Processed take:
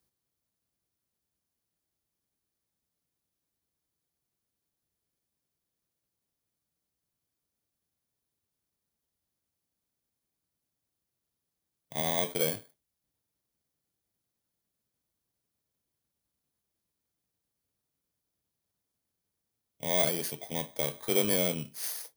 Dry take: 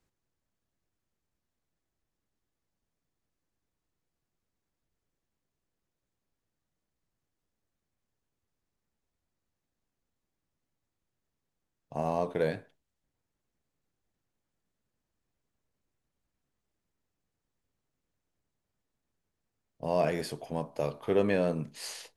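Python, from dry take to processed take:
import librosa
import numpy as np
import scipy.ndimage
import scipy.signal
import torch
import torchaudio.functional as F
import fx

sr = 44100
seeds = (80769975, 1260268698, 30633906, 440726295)

y = fx.bit_reversed(x, sr, seeds[0], block=16)
y = scipy.signal.sosfilt(scipy.signal.butter(2, 55.0, 'highpass', fs=sr, output='sos'), y)
y = fx.high_shelf(y, sr, hz=2200.0, db=9.0)
y = y * librosa.db_to_amplitude(-3.0)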